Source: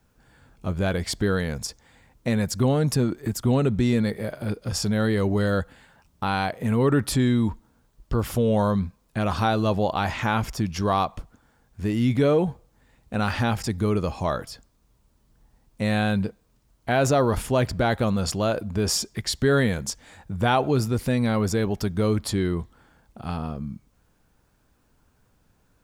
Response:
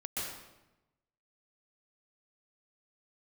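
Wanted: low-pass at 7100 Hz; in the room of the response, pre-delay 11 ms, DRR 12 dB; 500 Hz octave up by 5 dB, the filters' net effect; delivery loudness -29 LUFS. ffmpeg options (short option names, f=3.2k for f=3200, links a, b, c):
-filter_complex "[0:a]lowpass=7.1k,equalizer=f=500:t=o:g=6,asplit=2[a][b];[1:a]atrim=start_sample=2205,adelay=11[c];[b][c]afir=irnorm=-1:irlink=0,volume=-15dB[d];[a][d]amix=inputs=2:normalize=0,volume=-7dB"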